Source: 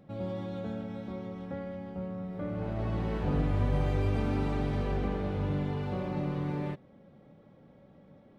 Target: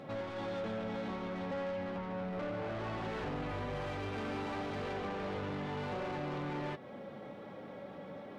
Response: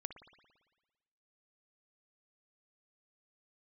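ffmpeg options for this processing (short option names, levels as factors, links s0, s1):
-filter_complex "[0:a]acompressor=threshold=0.01:ratio=3,asplit=2[s0][s1];[s1]highpass=f=720:p=1,volume=17.8,asoftclip=type=tanh:threshold=0.0316[s2];[s0][s2]amix=inputs=2:normalize=0,lowpass=f=3700:p=1,volume=0.501,flanger=delay=7.5:depth=3.3:regen=-53:speed=0.31:shape=triangular,volume=1.33"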